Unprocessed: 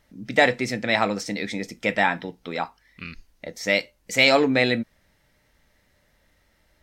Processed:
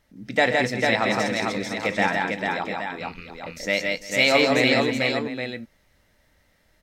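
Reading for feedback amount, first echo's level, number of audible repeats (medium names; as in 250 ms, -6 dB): no regular repeats, -11.0 dB, 6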